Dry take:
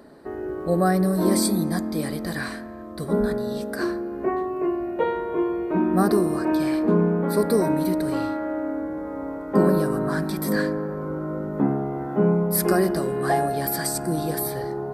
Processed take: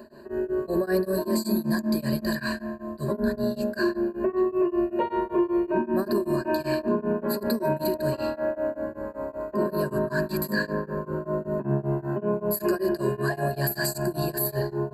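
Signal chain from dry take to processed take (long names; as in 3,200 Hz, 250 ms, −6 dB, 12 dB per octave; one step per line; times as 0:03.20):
EQ curve with evenly spaced ripples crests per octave 1.4, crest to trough 17 dB
brickwall limiter −15 dBFS, peak gain reduction 11.5 dB
tremolo along a rectified sine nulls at 5.2 Hz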